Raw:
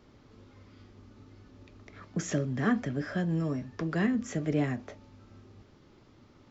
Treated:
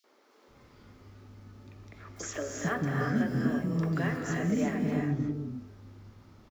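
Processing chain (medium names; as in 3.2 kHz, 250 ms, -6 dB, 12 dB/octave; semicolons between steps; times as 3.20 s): companded quantiser 8-bit; three bands offset in time highs, mids, lows 40/480 ms, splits 350/3300 Hz; gated-style reverb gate 380 ms rising, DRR 1 dB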